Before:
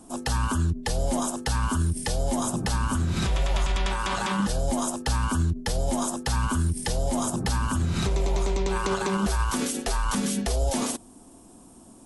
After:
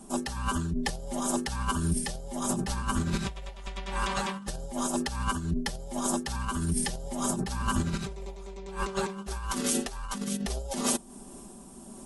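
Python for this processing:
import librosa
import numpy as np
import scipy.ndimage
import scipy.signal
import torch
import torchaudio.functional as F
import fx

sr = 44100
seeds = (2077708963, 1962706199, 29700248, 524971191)

y = x + 0.78 * np.pad(x, (int(5.1 * sr / 1000.0), 0))[:len(x)]
y = fx.over_compress(y, sr, threshold_db=-27.0, ratio=-0.5)
y = fx.am_noise(y, sr, seeds[0], hz=5.7, depth_pct=60)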